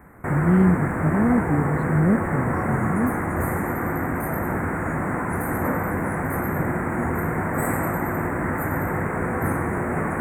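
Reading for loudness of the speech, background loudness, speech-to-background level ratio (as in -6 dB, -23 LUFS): -23.0 LUFS, -25.0 LUFS, 2.0 dB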